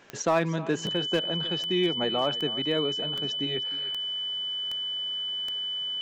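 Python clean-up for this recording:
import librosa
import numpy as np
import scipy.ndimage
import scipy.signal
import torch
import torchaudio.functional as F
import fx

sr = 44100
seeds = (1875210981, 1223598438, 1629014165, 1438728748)

y = fx.fix_declip(x, sr, threshold_db=-16.5)
y = fx.fix_declick_ar(y, sr, threshold=10.0)
y = fx.notch(y, sr, hz=3000.0, q=30.0)
y = fx.fix_echo_inverse(y, sr, delay_ms=309, level_db=-17.0)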